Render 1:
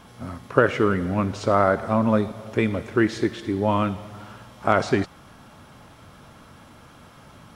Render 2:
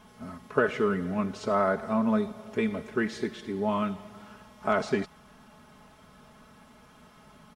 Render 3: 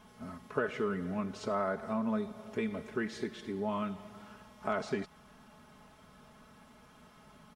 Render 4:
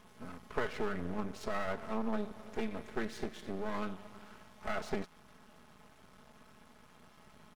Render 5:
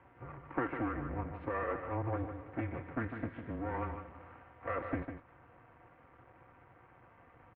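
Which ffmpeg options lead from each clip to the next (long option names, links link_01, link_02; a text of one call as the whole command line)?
ffmpeg -i in.wav -af "aecho=1:1:4.7:0.68,volume=-8dB" out.wav
ffmpeg -i in.wav -af "acompressor=threshold=-32dB:ratio=1.5,volume=-3.5dB" out.wav
ffmpeg -i in.wav -af "aeval=exprs='max(val(0),0)':channel_layout=same,volume=2dB" out.wav
ffmpeg -i in.wav -filter_complex "[0:a]asplit=2[link_01][link_02];[link_02]aecho=0:1:151:0.398[link_03];[link_01][link_03]amix=inputs=2:normalize=0,highpass=frequency=200:width_type=q:width=0.5412,highpass=frequency=200:width_type=q:width=1.307,lowpass=frequency=2400:width_type=q:width=0.5176,lowpass=frequency=2400:width_type=q:width=0.7071,lowpass=frequency=2400:width_type=q:width=1.932,afreqshift=-120,volume=1dB" out.wav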